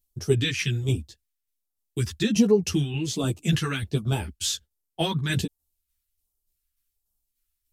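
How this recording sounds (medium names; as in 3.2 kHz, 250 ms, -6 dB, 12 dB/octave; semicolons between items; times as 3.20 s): phasing stages 2, 1.3 Hz, lowest notch 600–1900 Hz; tremolo saw down 3.4 Hz, depth 45%; a shimmering, thickened sound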